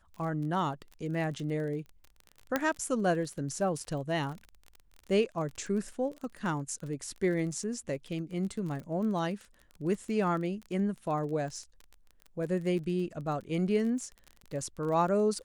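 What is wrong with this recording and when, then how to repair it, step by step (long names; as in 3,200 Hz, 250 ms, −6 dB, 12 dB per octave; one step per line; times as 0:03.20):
surface crackle 28 per second −38 dBFS
0:02.56: click −13 dBFS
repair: click removal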